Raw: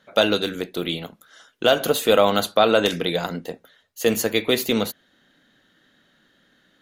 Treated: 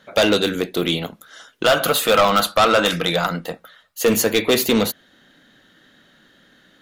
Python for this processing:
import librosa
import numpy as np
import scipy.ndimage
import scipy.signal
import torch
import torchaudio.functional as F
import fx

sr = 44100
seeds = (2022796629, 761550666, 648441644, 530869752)

y = fx.graphic_eq_31(x, sr, hz=(100, 250, 400, 1250, 6300), db=(-12, -8, -11, 9, -4), at=(1.63, 4.01))
y = 10.0 ** (-16.5 / 20.0) * np.tanh(y / 10.0 ** (-16.5 / 20.0))
y = y * librosa.db_to_amplitude(7.0)